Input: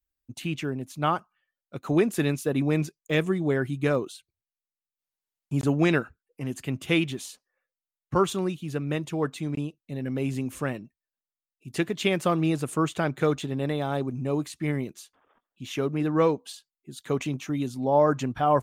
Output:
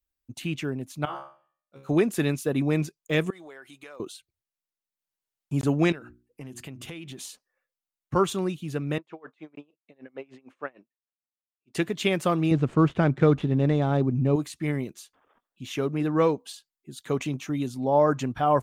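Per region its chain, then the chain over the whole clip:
1.05–1.89 s: bass shelf 130 Hz -8.5 dB + feedback comb 68 Hz, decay 0.42 s, mix 100% + de-hum 76.75 Hz, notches 37
3.30–4.00 s: high-pass 690 Hz + compression, threshold -42 dBFS
5.92–7.19 s: hum notches 60/120/180/240/300/360 Hz + compression 16:1, threshold -35 dBFS
8.98–11.75 s: band-pass 450–2400 Hz + logarithmic tremolo 6.6 Hz, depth 28 dB
12.51–14.36 s: median filter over 9 samples + low-pass 5.4 kHz + bass shelf 320 Hz +9.5 dB
whole clip: none

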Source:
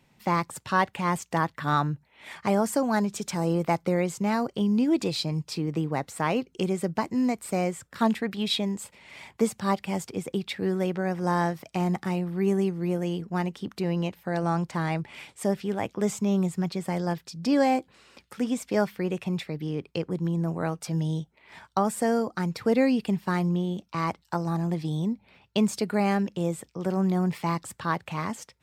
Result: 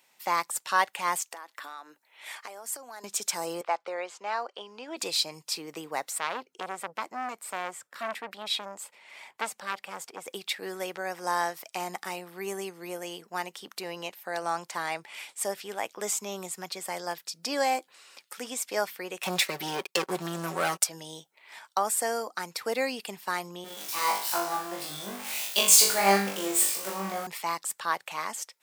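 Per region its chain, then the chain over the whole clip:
1.22–3.04 s: steep high-pass 230 Hz + compression 16:1, threshold -36 dBFS
3.61–4.97 s: band-pass 480–3000 Hz + peaking EQ 2.1 kHz -6 dB 0.24 oct
6.18–10.26 s: treble shelf 3.3 kHz -10.5 dB + transformer saturation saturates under 1.4 kHz
19.23–20.84 s: waveshaping leveller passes 3 + comb 5.3 ms, depth 60%
23.64–27.27 s: jump at every zero crossing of -32 dBFS + flutter echo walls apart 3.5 m, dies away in 0.56 s + three bands expanded up and down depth 70%
whole clip: high-pass 630 Hz 12 dB/octave; treble shelf 5.8 kHz +12 dB

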